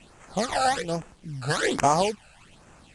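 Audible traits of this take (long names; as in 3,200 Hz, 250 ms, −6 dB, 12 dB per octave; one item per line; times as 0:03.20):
aliases and images of a low sample rate 5,500 Hz, jitter 20%
phaser sweep stages 12, 1.2 Hz, lowest notch 330–4,000 Hz
a quantiser's noise floor 10 bits, dither none
Ogg Vorbis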